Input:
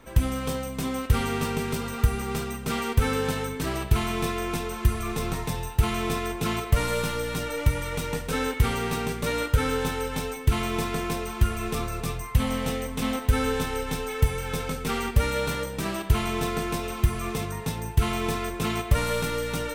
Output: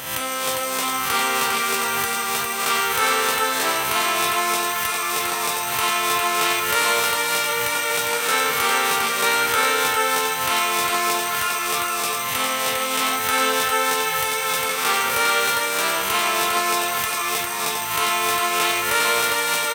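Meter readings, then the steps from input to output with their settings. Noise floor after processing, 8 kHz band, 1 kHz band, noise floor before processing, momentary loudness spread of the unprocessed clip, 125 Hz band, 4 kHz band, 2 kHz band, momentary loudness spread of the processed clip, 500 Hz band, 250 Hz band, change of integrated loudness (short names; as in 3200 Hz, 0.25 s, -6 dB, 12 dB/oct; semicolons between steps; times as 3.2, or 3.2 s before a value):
-25 dBFS, +14.0 dB, +11.5 dB, -36 dBFS, 5 LU, -17.5 dB, +12.5 dB, +12.0 dB, 4 LU, +3.5 dB, -5.0 dB, +7.5 dB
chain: spectral swells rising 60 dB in 0.85 s; HPF 730 Hz 12 dB/oct; echo 0.404 s -4 dB; gain +9 dB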